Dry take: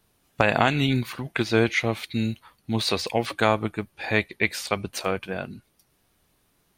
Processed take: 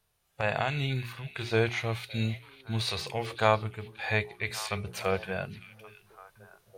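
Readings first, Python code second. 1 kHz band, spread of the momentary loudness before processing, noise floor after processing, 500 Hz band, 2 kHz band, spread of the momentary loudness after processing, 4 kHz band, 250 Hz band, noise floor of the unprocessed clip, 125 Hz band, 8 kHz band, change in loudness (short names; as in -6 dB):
-5.5 dB, 10 LU, -73 dBFS, -5.5 dB, -6.5 dB, 11 LU, -6.0 dB, -10.5 dB, -68 dBFS, -3.0 dB, -6.0 dB, -6.0 dB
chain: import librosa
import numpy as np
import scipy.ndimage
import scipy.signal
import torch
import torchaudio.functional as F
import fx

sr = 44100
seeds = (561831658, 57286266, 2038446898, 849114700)

p1 = fx.peak_eq(x, sr, hz=270.0, db=-13.0, octaves=0.88)
p2 = fx.hum_notches(p1, sr, base_hz=60, count=7)
p3 = fx.hpss(p2, sr, part='percussive', gain_db=-12)
p4 = fx.rider(p3, sr, range_db=4, speed_s=2.0)
y = p4 + fx.echo_stepped(p4, sr, ms=563, hz=2900.0, octaves=-1.4, feedback_pct=70, wet_db=-12, dry=0)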